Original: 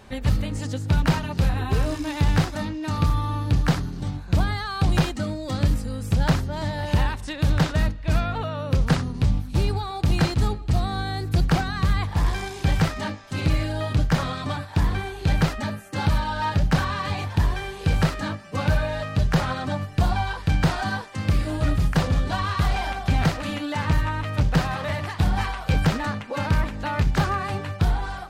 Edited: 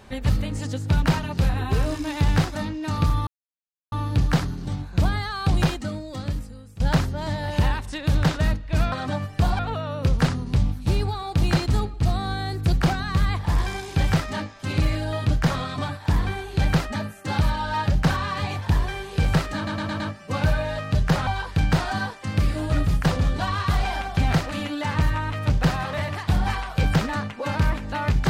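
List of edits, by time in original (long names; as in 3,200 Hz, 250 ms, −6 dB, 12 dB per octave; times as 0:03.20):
0:03.27: splice in silence 0.65 s
0:04.91–0:06.15: fade out, to −21 dB
0:18.24: stutter 0.11 s, 5 plays
0:19.51–0:20.18: move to 0:08.27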